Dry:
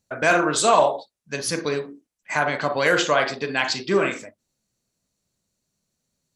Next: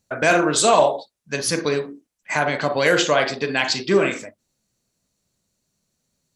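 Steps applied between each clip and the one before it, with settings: dynamic bell 1.2 kHz, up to -5 dB, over -30 dBFS, Q 1.2; trim +3.5 dB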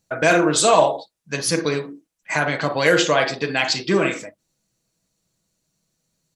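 comb 6.2 ms, depth 38%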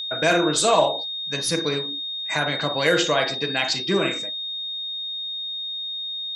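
whistle 3.7 kHz -24 dBFS; trim -3.5 dB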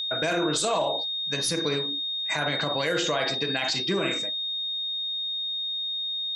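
peak limiter -16.5 dBFS, peak gain reduction 10.5 dB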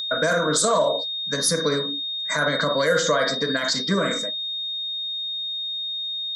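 static phaser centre 530 Hz, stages 8; trim +8.5 dB

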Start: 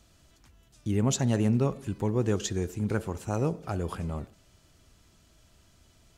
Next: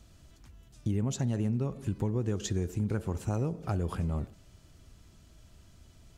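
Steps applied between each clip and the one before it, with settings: bass shelf 270 Hz +7.5 dB; compression 6:1, threshold -26 dBFS, peak gain reduction 10.5 dB; trim -1 dB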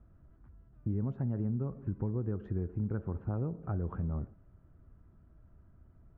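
four-pole ladder low-pass 1.7 kHz, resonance 45%; tilt shelf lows +6.5 dB, about 740 Hz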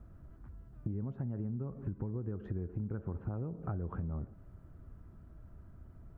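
compression, threshold -41 dBFS, peak gain reduction 11.5 dB; trim +6 dB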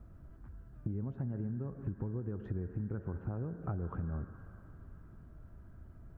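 on a send at -16.5 dB: resonant low-pass 1.6 kHz, resonance Q 10 + reverberation RT60 3.7 s, pre-delay 102 ms

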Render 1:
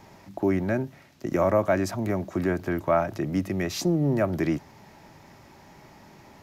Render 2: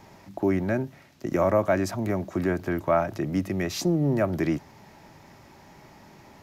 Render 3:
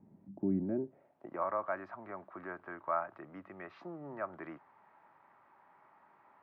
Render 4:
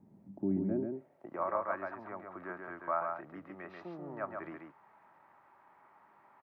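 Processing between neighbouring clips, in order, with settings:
no audible change
band-pass sweep 210 Hz -> 1.2 kHz, 0.53–1.45 s; distance through air 390 m; trim -2.5 dB
delay 137 ms -4.5 dB

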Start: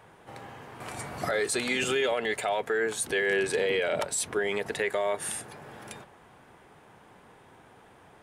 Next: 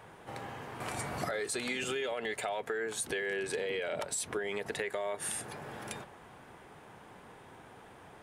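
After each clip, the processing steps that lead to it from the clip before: compression 6:1, threshold -34 dBFS, peak gain reduction 11 dB; trim +1.5 dB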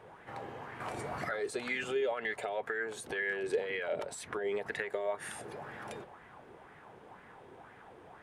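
treble shelf 5.4 kHz -9 dB; sweeping bell 2 Hz 370–2000 Hz +10 dB; trim -4 dB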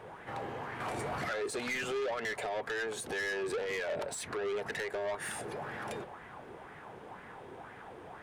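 saturation -37 dBFS, distortion -8 dB; trim +5.5 dB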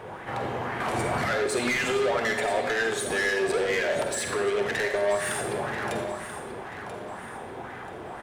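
feedback delay 985 ms, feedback 38%, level -12 dB; reverberation RT60 0.80 s, pre-delay 44 ms, DRR 4.5 dB; trim +8 dB

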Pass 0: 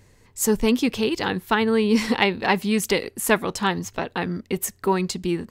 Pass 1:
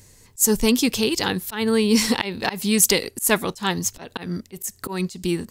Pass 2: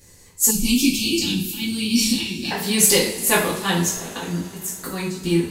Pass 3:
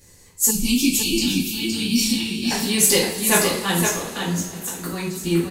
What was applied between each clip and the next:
tone controls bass +2 dB, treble +14 dB; slow attack 158 ms
two-slope reverb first 0.46 s, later 4.4 s, from -22 dB, DRR -7.5 dB; time-frequency box 0.51–2.51 s, 380–2200 Hz -21 dB; trim -5.5 dB
delay 516 ms -5.5 dB; trim -1 dB

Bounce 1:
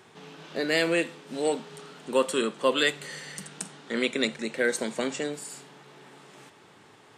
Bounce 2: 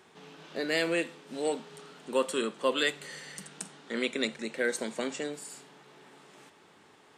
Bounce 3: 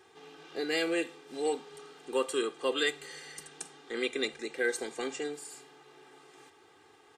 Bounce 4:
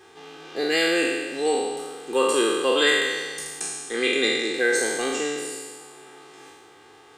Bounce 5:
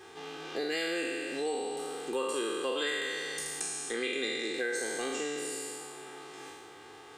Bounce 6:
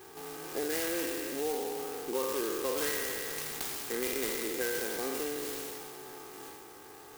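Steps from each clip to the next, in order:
peaking EQ 120 Hz -13 dB 0.29 oct; trim -4 dB
comb 2.5 ms, depth 87%; trim -4 dB
spectral sustain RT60 1.55 s; trim +6.5 dB
compression 3:1, threshold -34 dBFS, peak gain reduction 14 dB
sampling jitter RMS 0.092 ms

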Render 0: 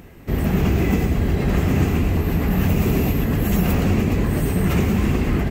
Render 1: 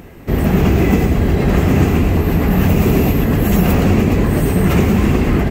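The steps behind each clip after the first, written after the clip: peaking EQ 560 Hz +3 dB 2.8 oct; trim +4.5 dB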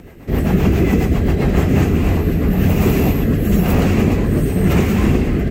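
rotary cabinet horn 7.5 Hz, later 1 Hz, at 1.32 s; bit crusher 12-bit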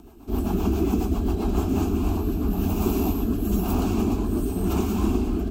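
static phaser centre 520 Hz, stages 6; trim -5 dB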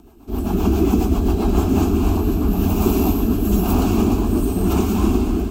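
level rider gain up to 6.5 dB; thinning echo 243 ms, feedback 68%, level -12 dB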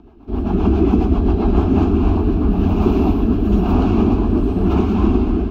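distance through air 280 m; trim +2.5 dB

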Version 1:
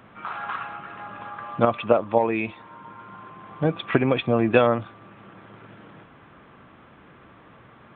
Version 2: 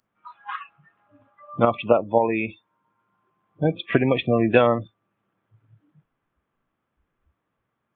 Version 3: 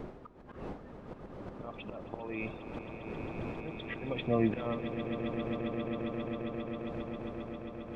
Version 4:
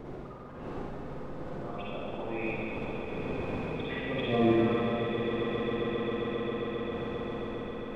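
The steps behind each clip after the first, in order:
spectral noise reduction 29 dB; trim +1 dB
wind noise 460 Hz -33 dBFS; slow attack 700 ms; echo with a slow build-up 134 ms, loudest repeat 8, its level -11.5 dB; trim -4 dB
reverberation RT60 2.3 s, pre-delay 44 ms, DRR -7.5 dB; in parallel at -9 dB: hard clipper -22.5 dBFS, distortion -11 dB; on the sum: trim -4.5 dB

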